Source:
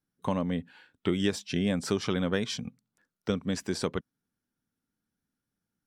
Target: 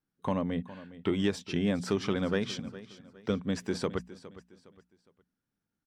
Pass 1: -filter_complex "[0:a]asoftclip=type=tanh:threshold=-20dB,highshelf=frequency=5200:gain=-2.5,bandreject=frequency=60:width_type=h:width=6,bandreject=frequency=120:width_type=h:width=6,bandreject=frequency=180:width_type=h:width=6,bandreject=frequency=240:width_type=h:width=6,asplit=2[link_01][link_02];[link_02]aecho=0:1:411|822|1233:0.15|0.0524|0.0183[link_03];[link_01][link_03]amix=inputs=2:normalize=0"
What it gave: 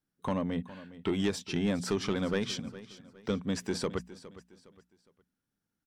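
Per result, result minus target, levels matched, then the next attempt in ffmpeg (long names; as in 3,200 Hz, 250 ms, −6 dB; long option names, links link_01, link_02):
soft clipping: distortion +9 dB; 8,000 Hz band +5.0 dB
-filter_complex "[0:a]asoftclip=type=tanh:threshold=-13.5dB,highshelf=frequency=5200:gain=-2.5,bandreject=frequency=60:width_type=h:width=6,bandreject=frequency=120:width_type=h:width=6,bandreject=frequency=180:width_type=h:width=6,bandreject=frequency=240:width_type=h:width=6,asplit=2[link_01][link_02];[link_02]aecho=0:1:411|822|1233:0.15|0.0524|0.0183[link_03];[link_01][link_03]amix=inputs=2:normalize=0"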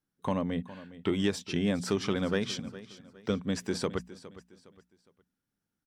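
8,000 Hz band +4.0 dB
-filter_complex "[0:a]asoftclip=type=tanh:threshold=-13.5dB,highshelf=frequency=5200:gain=-9,bandreject=frequency=60:width_type=h:width=6,bandreject=frequency=120:width_type=h:width=6,bandreject=frequency=180:width_type=h:width=6,bandreject=frequency=240:width_type=h:width=6,asplit=2[link_01][link_02];[link_02]aecho=0:1:411|822|1233:0.15|0.0524|0.0183[link_03];[link_01][link_03]amix=inputs=2:normalize=0"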